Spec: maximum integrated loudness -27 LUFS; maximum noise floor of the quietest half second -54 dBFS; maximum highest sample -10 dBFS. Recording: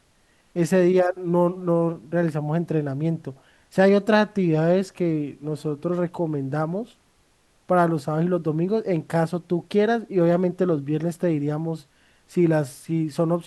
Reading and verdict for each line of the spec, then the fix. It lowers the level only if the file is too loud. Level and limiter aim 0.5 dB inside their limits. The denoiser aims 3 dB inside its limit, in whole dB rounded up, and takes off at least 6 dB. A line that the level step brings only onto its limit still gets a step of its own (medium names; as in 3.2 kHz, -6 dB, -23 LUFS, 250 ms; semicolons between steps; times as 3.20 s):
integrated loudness -23.0 LUFS: fail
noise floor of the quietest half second -62 dBFS: pass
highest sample -6.5 dBFS: fail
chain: trim -4.5 dB